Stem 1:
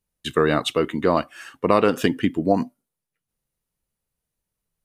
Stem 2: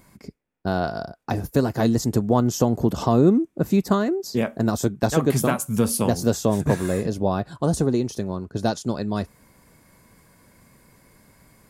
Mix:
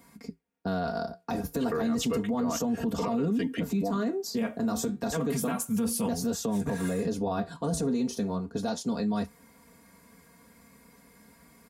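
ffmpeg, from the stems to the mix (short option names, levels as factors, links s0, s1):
-filter_complex "[0:a]adelay=1350,volume=0.631[s0];[1:a]highpass=66,flanger=delay=7:depth=9.1:regen=-65:speed=0.32:shape=triangular,volume=1.06,asplit=2[s1][s2];[s2]apad=whole_len=273342[s3];[s0][s3]sidechaincompress=threshold=0.0631:ratio=8:attack=10:release=276[s4];[s4][s1]amix=inputs=2:normalize=0,aecho=1:1:4.3:0.83,acrossover=split=190[s5][s6];[s6]acompressor=threshold=0.0562:ratio=2[s7];[s5][s7]amix=inputs=2:normalize=0,alimiter=limit=0.0841:level=0:latency=1:release=17"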